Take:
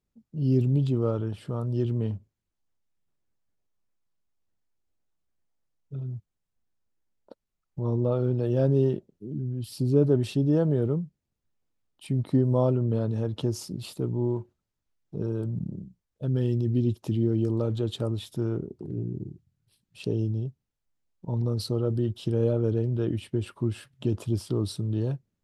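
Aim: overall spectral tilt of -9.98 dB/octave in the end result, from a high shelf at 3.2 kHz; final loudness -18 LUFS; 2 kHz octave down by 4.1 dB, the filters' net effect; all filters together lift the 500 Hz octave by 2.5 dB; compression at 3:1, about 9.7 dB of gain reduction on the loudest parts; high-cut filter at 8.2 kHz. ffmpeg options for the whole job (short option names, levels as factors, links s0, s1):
-af "lowpass=8200,equalizer=f=500:t=o:g=3.5,equalizer=f=2000:t=o:g=-3.5,highshelf=f=3200:g=-6.5,acompressor=threshold=0.0398:ratio=3,volume=5.62"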